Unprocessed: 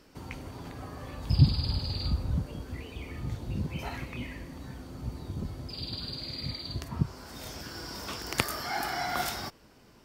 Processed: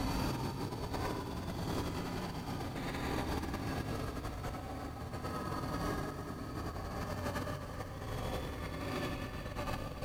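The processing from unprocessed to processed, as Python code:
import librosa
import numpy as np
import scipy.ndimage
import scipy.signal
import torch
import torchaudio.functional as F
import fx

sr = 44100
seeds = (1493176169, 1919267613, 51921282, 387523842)

y = fx.paulstretch(x, sr, seeds[0], factor=15.0, window_s=0.05, from_s=0.52)
y = fx.wow_flutter(y, sr, seeds[1], rate_hz=2.1, depth_cents=27.0)
y = fx.echo_feedback(y, sr, ms=107, feedback_pct=52, wet_db=-4)
y = fx.over_compress(y, sr, threshold_db=-43.0, ratio=-0.5)
y = fx.echo_crushed(y, sr, ms=376, feedback_pct=80, bits=11, wet_db=-12)
y = y * 10.0 ** (4.5 / 20.0)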